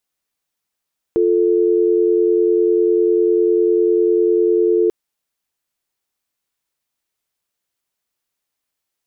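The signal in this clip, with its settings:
call progress tone dial tone, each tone −14.5 dBFS 3.74 s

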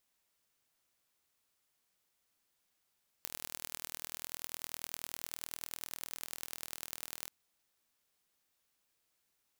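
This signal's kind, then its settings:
impulse train 40.2 per second, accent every 4, −11 dBFS 4.03 s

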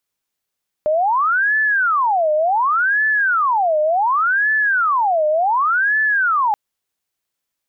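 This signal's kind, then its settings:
siren wail 607–1,740 Hz 0.68 per second sine −13.5 dBFS 5.68 s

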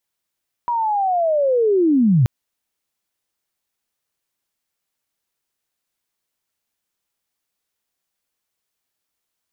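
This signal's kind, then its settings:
glide linear 970 Hz → 110 Hz −17.5 dBFS → −10.5 dBFS 1.58 s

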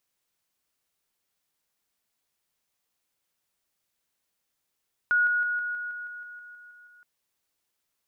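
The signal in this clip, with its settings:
level staircase 1,450 Hz −19 dBFS, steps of −3 dB, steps 12, 0.16 s 0.00 s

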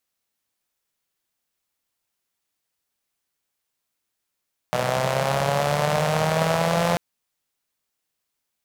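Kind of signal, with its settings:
pulse-train model of a four-cylinder engine, changing speed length 2.24 s, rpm 3,700, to 5,200, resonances 160/590 Hz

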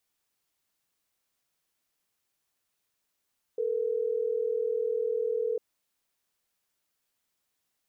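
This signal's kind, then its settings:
call progress tone ringback tone, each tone −29 dBFS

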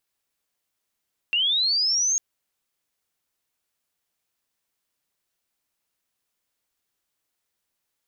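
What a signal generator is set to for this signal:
glide linear 2,700 Hz → 6,600 Hz −19 dBFS → −19.5 dBFS 0.85 s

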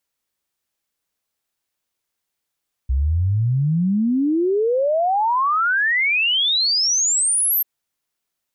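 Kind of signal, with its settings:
exponential sine sweep 62 Hz → 13,000 Hz 4.74 s −15.5 dBFS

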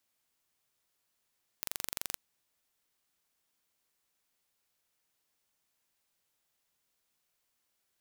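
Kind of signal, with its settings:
impulse train 23.4 per second, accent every 0, −8 dBFS 0.52 s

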